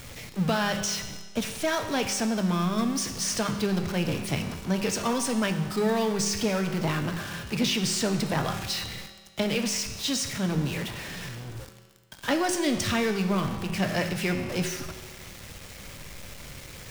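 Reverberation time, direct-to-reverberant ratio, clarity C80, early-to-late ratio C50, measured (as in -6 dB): 1.5 s, 6.0 dB, 9.5 dB, 8.5 dB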